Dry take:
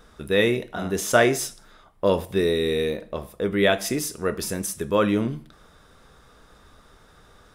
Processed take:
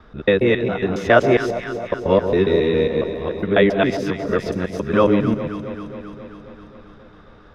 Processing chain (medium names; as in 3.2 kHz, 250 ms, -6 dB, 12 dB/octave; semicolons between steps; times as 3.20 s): time reversed locally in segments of 137 ms; distance through air 260 m; echo whose repeats swap between lows and highs 134 ms, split 1 kHz, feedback 81%, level -9 dB; trim +5.5 dB